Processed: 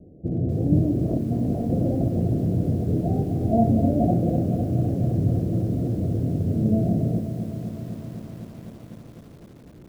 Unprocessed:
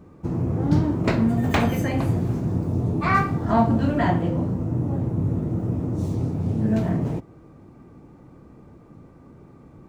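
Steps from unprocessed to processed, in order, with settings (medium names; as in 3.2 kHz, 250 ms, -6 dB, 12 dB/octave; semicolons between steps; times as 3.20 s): steep low-pass 720 Hz 96 dB/octave; 0.95–3.11 s: compressor with a negative ratio -23 dBFS, ratio -0.5; bit-crushed delay 253 ms, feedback 80%, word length 8-bit, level -9.5 dB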